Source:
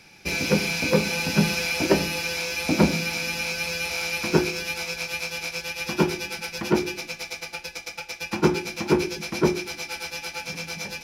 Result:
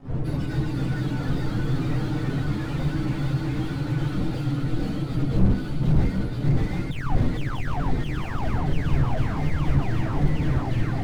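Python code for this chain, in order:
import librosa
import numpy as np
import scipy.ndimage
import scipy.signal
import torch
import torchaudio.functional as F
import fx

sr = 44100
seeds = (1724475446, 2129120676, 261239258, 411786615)

p1 = fx.octave_mirror(x, sr, pivot_hz=870.0)
p2 = fx.dmg_wind(p1, sr, seeds[0], corner_hz=170.0, level_db=-22.0)
p3 = np.sign(p2) * np.maximum(np.abs(p2) - 10.0 ** (-34.5 / 20.0), 0.0)
p4 = fx.ellip_bandstop(p3, sr, low_hz=740.0, high_hz=2700.0, order=3, stop_db=40, at=(4.22, 5.36))
p5 = fx.spec_paint(p4, sr, seeds[1], shape='fall', start_s=6.91, length_s=0.23, low_hz=680.0, high_hz=3800.0, level_db=-9.0)
p6 = p5 + fx.echo_swing(p5, sr, ms=762, ratio=1.5, feedback_pct=65, wet_db=-9, dry=0)
p7 = fx.echo_pitch(p6, sr, ms=227, semitones=-1, count=3, db_per_echo=-3.0)
p8 = fx.chorus_voices(p7, sr, voices=6, hz=0.4, base_ms=11, depth_ms=4.5, mix_pct=50)
p9 = fx.slew_limit(p8, sr, full_power_hz=35.0)
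y = p9 * librosa.db_to_amplitude(-3.0)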